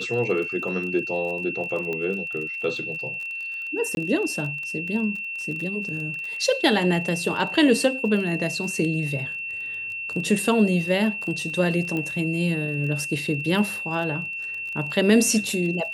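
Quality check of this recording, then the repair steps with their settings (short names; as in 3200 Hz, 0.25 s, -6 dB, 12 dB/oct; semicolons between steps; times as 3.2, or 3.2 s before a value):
crackle 28/s -32 dBFS
tone 2700 Hz -29 dBFS
1.93 pop -18 dBFS
3.95–3.97 gap 21 ms
11.97 pop -17 dBFS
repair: de-click; notch 2700 Hz, Q 30; interpolate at 3.95, 21 ms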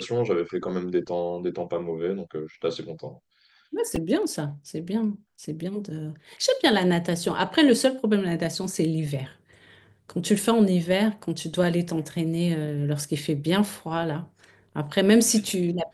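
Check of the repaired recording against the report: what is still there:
none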